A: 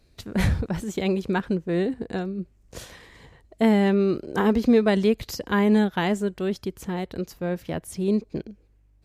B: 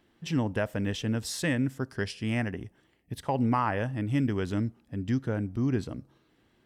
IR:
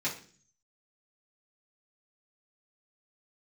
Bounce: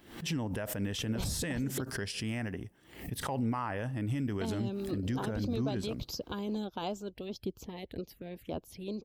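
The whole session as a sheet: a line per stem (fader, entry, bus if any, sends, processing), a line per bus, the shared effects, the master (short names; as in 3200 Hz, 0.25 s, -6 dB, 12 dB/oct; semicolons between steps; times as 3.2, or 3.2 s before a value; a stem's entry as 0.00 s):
-3.5 dB, 0.80 s, muted 1.82–4.09, no send, harmonic-percussive split harmonic -13 dB; envelope phaser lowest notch 440 Hz, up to 1900 Hz, full sweep at -31.5 dBFS
-2.5 dB, 0.00 s, no send, high shelf 9300 Hz +11 dB; backwards sustainer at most 100 dB/s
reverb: off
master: limiter -25 dBFS, peak gain reduction 9 dB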